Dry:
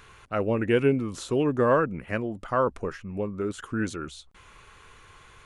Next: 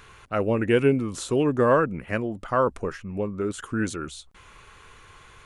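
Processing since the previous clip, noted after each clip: dynamic EQ 8700 Hz, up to +5 dB, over -57 dBFS, Q 1.4; gain +2 dB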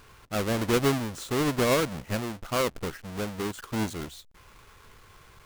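half-waves squared off; gain -8 dB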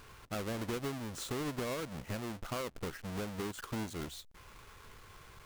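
compressor 6:1, threshold -35 dBFS, peak gain reduction 14.5 dB; gain -1.5 dB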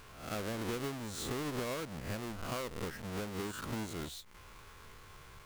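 spectral swells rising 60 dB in 0.58 s; gain -1.5 dB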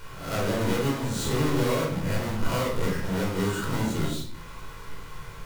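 shoebox room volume 950 m³, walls furnished, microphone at 4.7 m; gain +4.5 dB

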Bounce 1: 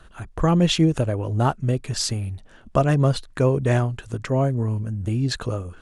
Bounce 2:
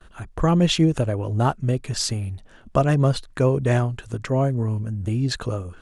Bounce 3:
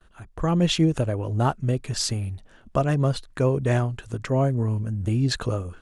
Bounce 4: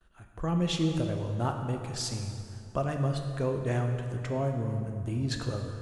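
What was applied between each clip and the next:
gate with hold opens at -42 dBFS
AGC gain up to 9 dB; gain -8 dB
plate-style reverb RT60 2.6 s, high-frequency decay 0.65×, DRR 3.5 dB; gain -8.5 dB

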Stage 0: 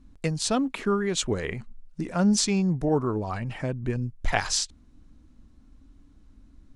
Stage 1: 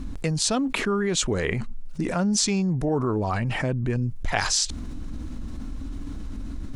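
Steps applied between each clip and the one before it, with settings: dynamic EQ 6400 Hz, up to +4 dB, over -37 dBFS, Q 0.81; fast leveller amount 70%; gain -3.5 dB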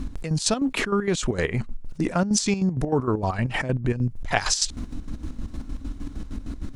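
chopper 6.5 Hz, depth 65%, duty 50%; gain +3 dB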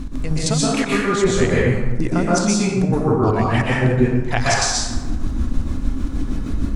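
vocal rider within 4 dB 0.5 s; plate-style reverb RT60 1.2 s, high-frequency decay 0.55×, pre-delay 0.11 s, DRR -5.5 dB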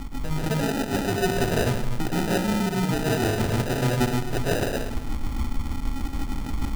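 sample-and-hold 40×; soft clip -7.5 dBFS, distortion -22 dB; gain -5.5 dB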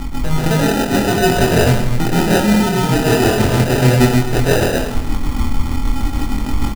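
doubler 24 ms -3 dB; gain +8.5 dB

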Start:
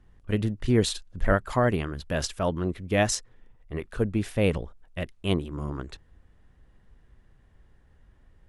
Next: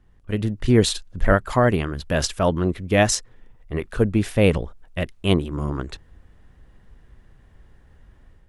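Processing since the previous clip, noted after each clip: AGC gain up to 7 dB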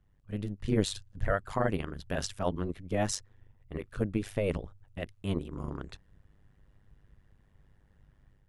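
AM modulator 100 Hz, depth 75%; gain -8 dB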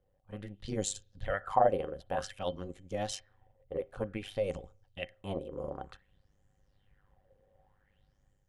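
small resonant body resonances 540/760/3100 Hz, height 14 dB, ringing for 0.1 s; on a send at -22 dB: reverb, pre-delay 30 ms; on the sum: LFO bell 0.54 Hz 490–7300 Hz +17 dB; gain -9 dB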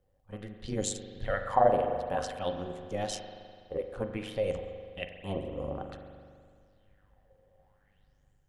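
spring tank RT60 2.1 s, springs 41 ms, chirp 30 ms, DRR 6 dB; gain +1.5 dB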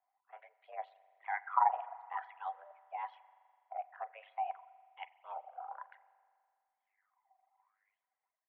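reverb removal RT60 1.8 s; mistuned SSB +230 Hz 460–2200 Hz; gain -4.5 dB

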